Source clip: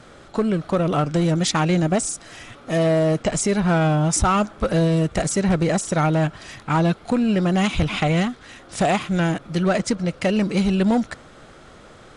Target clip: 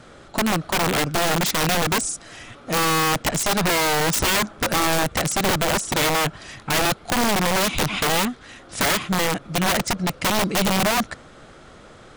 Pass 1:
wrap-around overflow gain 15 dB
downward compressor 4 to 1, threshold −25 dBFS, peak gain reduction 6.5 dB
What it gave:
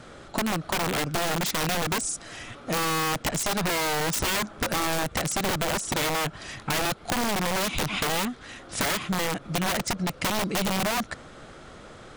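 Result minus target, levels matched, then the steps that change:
downward compressor: peak gain reduction +6.5 dB
remove: downward compressor 4 to 1, threshold −25 dBFS, peak gain reduction 6.5 dB

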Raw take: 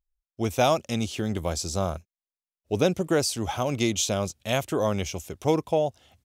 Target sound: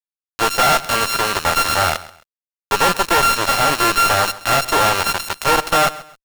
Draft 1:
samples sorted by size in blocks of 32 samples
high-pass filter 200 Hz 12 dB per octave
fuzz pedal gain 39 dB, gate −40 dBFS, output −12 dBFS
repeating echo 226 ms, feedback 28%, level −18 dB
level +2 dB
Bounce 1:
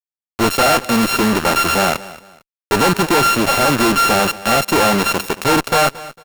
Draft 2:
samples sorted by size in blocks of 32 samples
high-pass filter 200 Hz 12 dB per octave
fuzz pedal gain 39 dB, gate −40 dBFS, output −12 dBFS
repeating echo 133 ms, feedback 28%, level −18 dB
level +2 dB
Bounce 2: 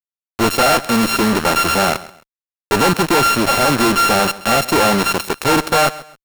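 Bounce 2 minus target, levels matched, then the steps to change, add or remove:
250 Hz band +10.0 dB
change: high-pass filter 670 Hz 12 dB per octave

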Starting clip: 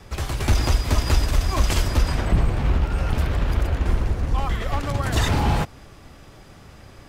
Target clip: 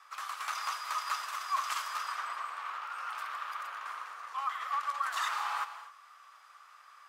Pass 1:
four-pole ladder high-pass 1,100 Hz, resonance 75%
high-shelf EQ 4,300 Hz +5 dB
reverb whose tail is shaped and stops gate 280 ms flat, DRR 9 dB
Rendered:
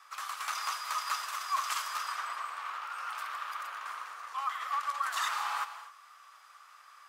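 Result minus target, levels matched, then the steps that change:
8,000 Hz band +3.0 dB
remove: high-shelf EQ 4,300 Hz +5 dB

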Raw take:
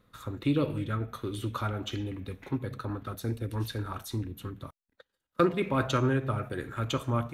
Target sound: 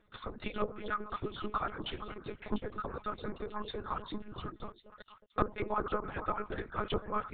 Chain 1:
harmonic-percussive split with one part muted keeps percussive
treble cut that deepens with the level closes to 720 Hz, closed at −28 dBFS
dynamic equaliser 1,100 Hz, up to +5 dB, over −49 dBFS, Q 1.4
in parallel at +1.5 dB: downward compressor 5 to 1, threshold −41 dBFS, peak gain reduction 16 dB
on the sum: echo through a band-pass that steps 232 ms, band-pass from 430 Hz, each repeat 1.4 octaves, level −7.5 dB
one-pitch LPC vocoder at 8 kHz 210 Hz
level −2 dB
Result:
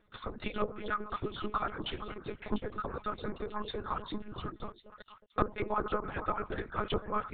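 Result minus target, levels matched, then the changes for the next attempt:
downward compressor: peak gain reduction −6 dB
change: downward compressor 5 to 1, threshold −48.5 dBFS, peak gain reduction 22 dB

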